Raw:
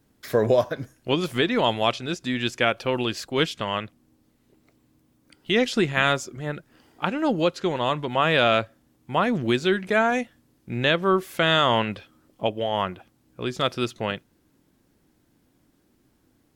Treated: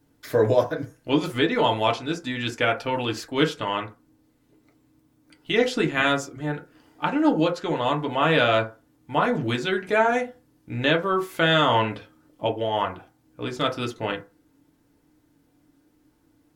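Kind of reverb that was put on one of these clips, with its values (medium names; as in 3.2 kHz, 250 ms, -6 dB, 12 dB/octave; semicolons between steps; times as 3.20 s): FDN reverb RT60 0.3 s, low-frequency decay 0.8×, high-frequency decay 0.4×, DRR 0.5 dB; trim -2.5 dB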